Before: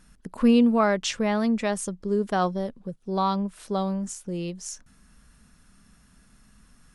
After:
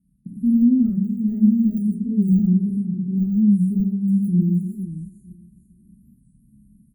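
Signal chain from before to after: high-pass 49 Hz; tilt shelf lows +9 dB, about 1.1 kHz; hum notches 50/100/150/200/250/300/350 Hz; feedback comb 69 Hz, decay 0.16 s, harmonics all, mix 60%; feedback delay 457 ms, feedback 35%, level -14 dB; algorithmic reverb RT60 0.56 s, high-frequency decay 0.55×, pre-delay 5 ms, DRR -5 dB; gate -41 dBFS, range -8 dB; level rider gain up to 8.5 dB; frequency weighting D; de-esser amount 90%; inverse Chebyshev band-stop 510–5900 Hz, stop band 50 dB; warped record 45 rpm, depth 160 cents; trim +5 dB

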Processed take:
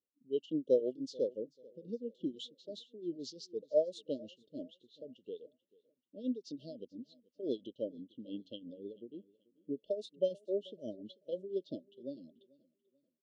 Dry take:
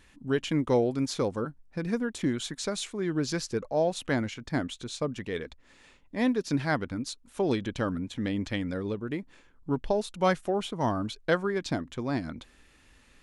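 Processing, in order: level-controlled noise filter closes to 1.3 kHz, open at -22 dBFS; frequency weighting A; tremolo triangle 5.9 Hz, depth 80%; brick-wall FIR band-stop 650–2700 Hz; feedback delay 437 ms, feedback 48%, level -16.5 dB; spectral contrast expander 1.5:1; trim +2.5 dB

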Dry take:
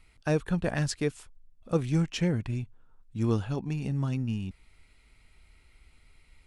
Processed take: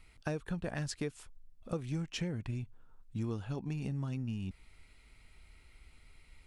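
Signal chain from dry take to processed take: compression 5:1, threshold -34 dBFS, peak gain reduction 13 dB

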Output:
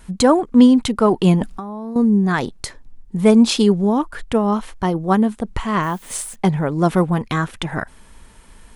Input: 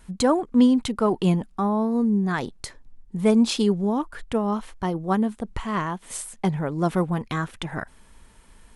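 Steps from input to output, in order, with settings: 1.41–1.96 s: compressor with a negative ratio -34 dBFS, ratio -1; 5.82–6.34 s: added noise blue -55 dBFS; trim +6.5 dB

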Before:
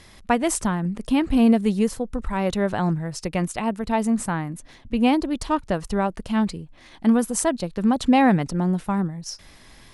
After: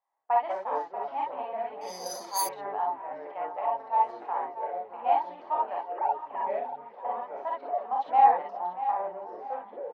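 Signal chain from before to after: 5.76–6.51 s: formants replaced by sine waves; feedback delay 635 ms, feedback 39%, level -12 dB; gate with hold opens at -34 dBFS; ladder high-pass 760 Hz, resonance 70%; band-stop 1.5 kHz, Q 7.3; ever faster or slower copies 115 ms, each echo -4 st, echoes 2, each echo -6 dB; distance through air 270 m; 1.81–2.42 s: careless resampling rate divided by 8×, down filtered, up zero stuff; gated-style reverb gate 80 ms rising, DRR -2 dB; 0.53–1.16 s: short-mantissa float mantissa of 4-bit; level-controlled noise filter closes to 1.4 kHz, open at -18.5 dBFS; treble shelf 2 kHz -10.5 dB

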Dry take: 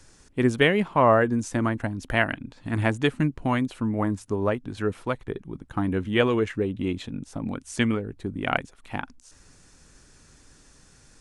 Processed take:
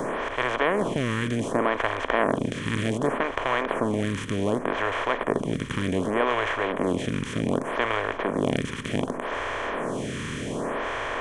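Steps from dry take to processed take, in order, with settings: spectral levelling over time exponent 0.2; lamp-driven phase shifter 0.66 Hz; trim -7.5 dB

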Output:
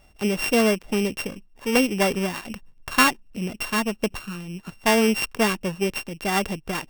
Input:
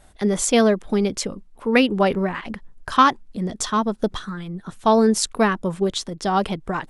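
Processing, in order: sorted samples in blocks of 16 samples; sliding maximum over 3 samples; trim -3 dB

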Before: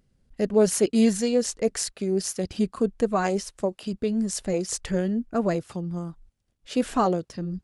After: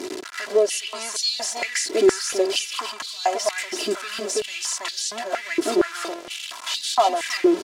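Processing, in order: jump at every zero crossing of -29 dBFS; treble shelf 3 kHz +8 dB; comb 3 ms, depth 96%; compression 4:1, threshold -21 dBFS, peak gain reduction 9.5 dB; distance through air 58 m; delay 328 ms -4 dB; step-sequenced high-pass 4.3 Hz 360–4000 Hz

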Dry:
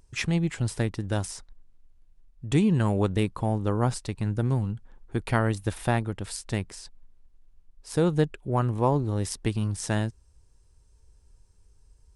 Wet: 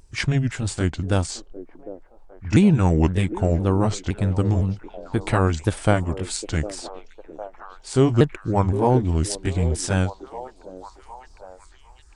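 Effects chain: sawtooth pitch modulation -5 st, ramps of 513 ms; repeats whose band climbs or falls 756 ms, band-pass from 420 Hz, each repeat 0.7 oct, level -9 dB; trim +7 dB

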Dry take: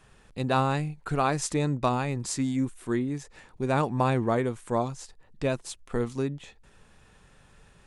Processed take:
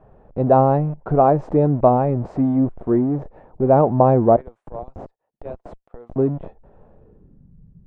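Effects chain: 4.36–6.16 s: differentiator; in parallel at -11.5 dB: Schmitt trigger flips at -41 dBFS; on the sum: low-pass sweep 670 Hz -> 170 Hz, 6.87–7.54 s; trim +7 dB

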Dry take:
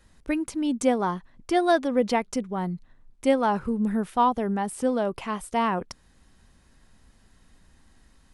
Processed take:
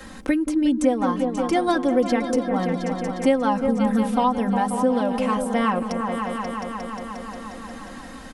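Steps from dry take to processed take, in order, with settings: comb 3.8 ms, depth 81%; on a send: delay with an opening low-pass 178 ms, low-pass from 400 Hz, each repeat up 2 oct, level -6 dB; on the sum: three bands compressed up and down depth 70%

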